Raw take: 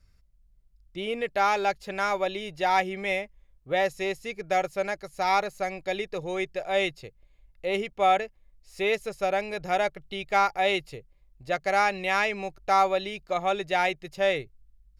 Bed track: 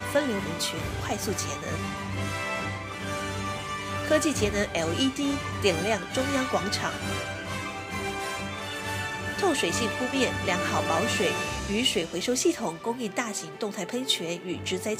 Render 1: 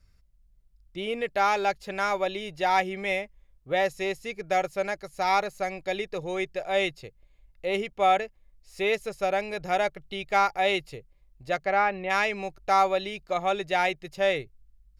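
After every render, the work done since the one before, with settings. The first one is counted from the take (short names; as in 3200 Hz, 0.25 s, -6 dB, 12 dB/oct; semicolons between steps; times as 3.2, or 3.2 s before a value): 11.64–12.09 LPF 3100 Hz -> 1600 Hz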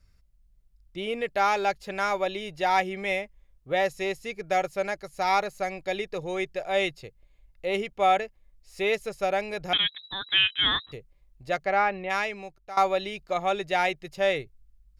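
9.73–10.92 inverted band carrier 3900 Hz; 11.92–12.77 fade out, to -18.5 dB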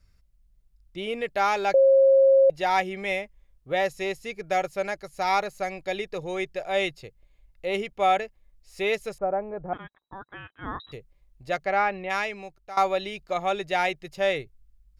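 1.74–2.5 bleep 540 Hz -13.5 dBFS; 9.18–10.8 LPF 1200 Hz 24 dB/oct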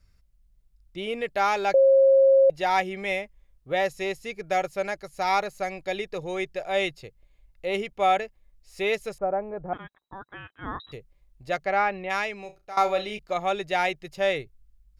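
12.41–13.19 flutter echo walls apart 5.7 m, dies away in 0.22 s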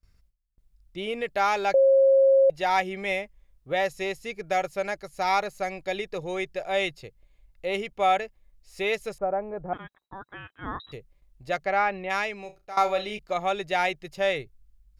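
gate with hold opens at -53 dBFS; dynamic EQ 290 Hz, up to -3 dB, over -30 dBFS, Q 0.97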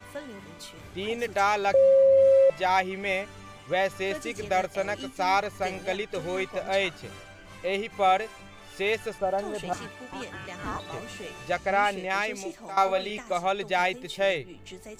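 add bed track -14 dB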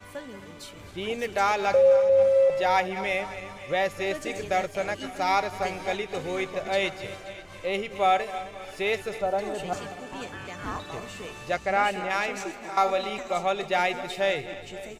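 regenerating reverse delay 0.131 s, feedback 71%, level -13.5 dB; echo 0.538 s -19.5 dB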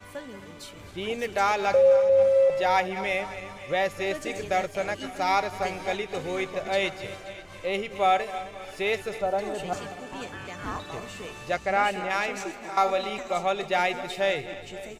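nothing audible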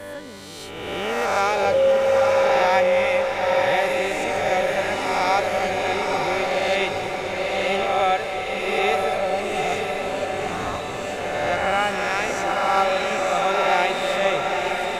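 spectral swells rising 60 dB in 1.84 s; diffused feedback echo 0.932 s, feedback 48%, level -3 dB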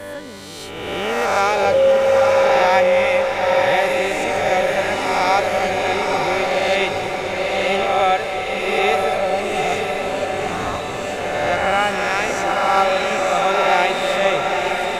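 gain +3.5 dB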